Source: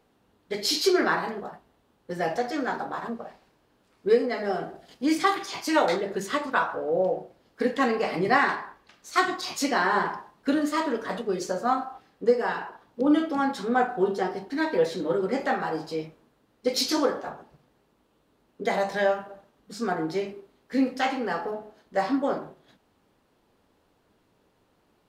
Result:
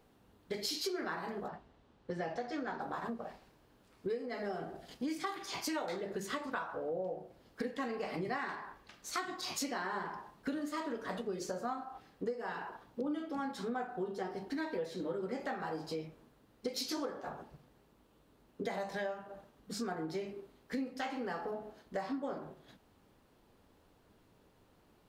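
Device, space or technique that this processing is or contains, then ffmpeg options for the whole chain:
ASMR close-microphone chain: -filter_complex "[0:a]lowshelf=f=140:g=6.5,acompressor=threshold=-35dB:ratio=5,highshelf=f=12k:g=5,asettb=1/sr,asplit=3[a][b][c];[a]atrim=end=1.484[d];[b]atrim=start=1.48:end=2.81,asetpts=PTS-STARTPTS,afade=t=in:d=0.004:c=qsin,afade=t=out:st=1.326:d=0.004:c=qsin,lowpass=5.4k[e];[c]atrim=start=2.806[f];[d][e]acrossfade=d=0.004:c1=hsin:c2=qsin[g];[g][f]acrossfade=d=0.004:c1=qsin:c2=hsin,volume=-1.5dB"

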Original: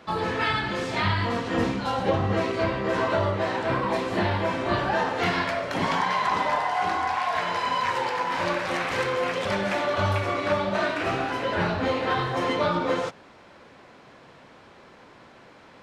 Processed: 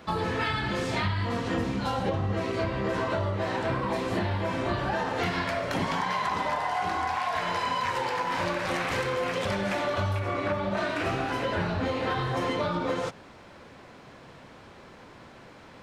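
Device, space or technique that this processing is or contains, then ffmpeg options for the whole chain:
ASMR close-microphone chain: -filter_complex "[0:a]asettb=1/sr,asplit=3[a][b][c];[a]atrim=end=10.194[d];[b]atrim=start=10.19:end=10.77,asetpts=PTS-STARTPTS,afade=t=in:d=0.004:c=qsin,afade=t=out:st=0.576:d=0.004:c=qsin,acrossover=split=2800[e][f];[f]acompressor=threshold=-47dB:ratio=4:attack=1:release=60[g];[e][g]amix=inputs=2:normalize=0[h];[c]atrim=start=10.766[i];[d][h]acrossfade=d=0.004:c1=hsin:c2=qsin[j];[j][i]acrossfade=d=0.004:c1=qsin:c2=hsin,lowshelf=f=160:g=8,acompressor=threshold=-25dB:ratio=6,highshelf=f=9k:g=7.5"

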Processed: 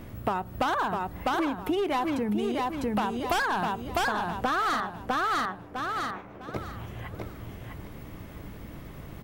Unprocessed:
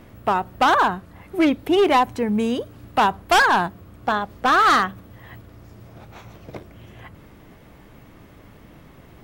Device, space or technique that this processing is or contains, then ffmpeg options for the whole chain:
ASMR close-microphone chain: -filter_complex "[0:a]asettb=1/sr,asplit=3[a][b][c];[a]atrim=end=4.804[d];[b]atrim=start=4.8:end=6.54,asetpts=PTS-STARTPTS,afade=t=in:d=0.004:c=qsin,afade=t=out:st=1.736:d=0.004:c=qsin,acrossover=split=220 2400:gain=0.178 1 0.0794[e][f][g];[e][f][g]amix=inputs=3:normalize=0[h];[c]atrim=start=6.536[i];[d][h]acrossfade=d=0.004:c1=hsin:c2=qsin[j];[j][i]acrossfade=d=0.004:c1=qsin:c2=hsin,lowshelf=f=220:g=5.5,aecho=1:1:652|1304|1956|2608:0.596|0.155|0.0403|0.0105,acompressor=threshold=-25dB:ratio=10,highshelf=f=10k:g=6"

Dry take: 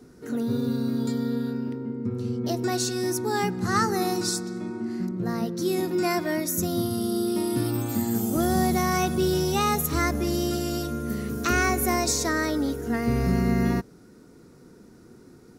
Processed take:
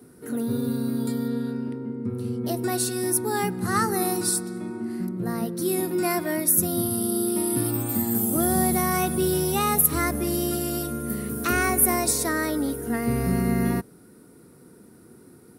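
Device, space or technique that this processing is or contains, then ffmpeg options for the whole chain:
budget condenser microphone: -filter_complex "[0:a]highpass=72,highshelf=f=8k:t=q:w=3:g=7,asettb=1/sr,asplit=3[a][b][c];[a]atrim=end=1.284[d];[b]atrim=start=1.28:end=2.08,asetpts=PTS-STARTPTS,afade=t=in:d=0.004:c=qsin,afade=t=out:st=0.796:d=0.004:c=qsin,lowpass=8.5k[e];[c]atrim=start=2.076[f];[d][e]acrossfade=d=0.004:c1=hsin:c2=qsin[g];[g][f]acrossfade=d=0.004:c1=qsin:c2=hsin"

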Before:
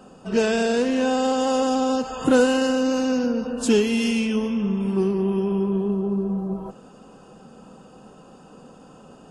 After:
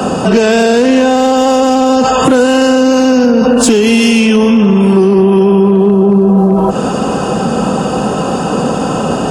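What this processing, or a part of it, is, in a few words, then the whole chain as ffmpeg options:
mastering chain: -filter_complex "[0:a]highpass=f=49:w=0.5412,highpass=f=49:w=1.3066,equalizer=f=730:t=o:w=0.77:g=2,acrossover=split=100|200[a][b][c];[a]acompressor=threshold=-52dB:ratio=4[d];[b]acompressor=threshold=-39dB:ratio=4[e];[c]acompressor=threshold=-24dB:ratio=4[f];[d][e][f]amix=inputs=3:normalize=0,acompressor=threshold=-35dB:ratio=2,asoftclip=type=hard:threshold=-26dB,alimiter=level_in=33.5dB:limit=-1dB:release=50:level=0:latency=1,volume=-1dB"

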